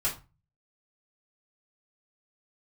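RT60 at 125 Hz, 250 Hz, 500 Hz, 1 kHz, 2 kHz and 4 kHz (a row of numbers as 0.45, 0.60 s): 0.60, 0.35, 0.25, 0.30, 0.25, 0.25 s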